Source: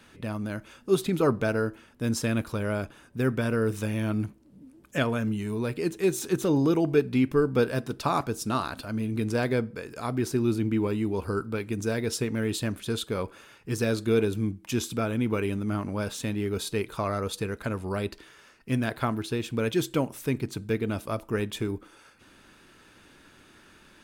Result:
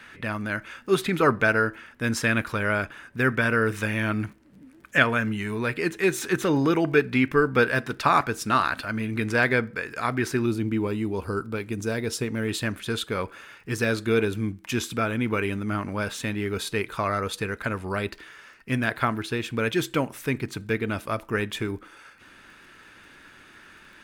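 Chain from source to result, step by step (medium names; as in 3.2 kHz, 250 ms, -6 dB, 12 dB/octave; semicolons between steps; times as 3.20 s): peaking EQ 1.8 kHz +14 dB 1.5 oct, from 10.46 s +3 dB, from 12.48 s +9 dB; crackle 28 per s -47 dBFS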